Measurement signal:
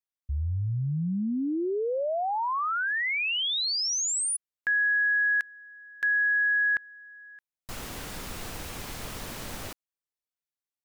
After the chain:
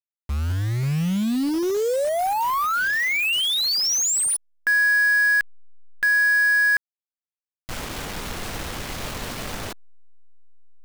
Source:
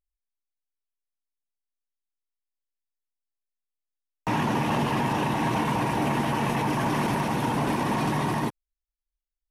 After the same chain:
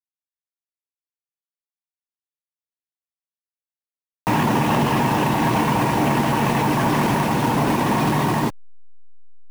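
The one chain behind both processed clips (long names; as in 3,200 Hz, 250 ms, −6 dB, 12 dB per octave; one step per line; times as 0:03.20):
hold until the input has moved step −34.5 dBFS
level +6.5 dB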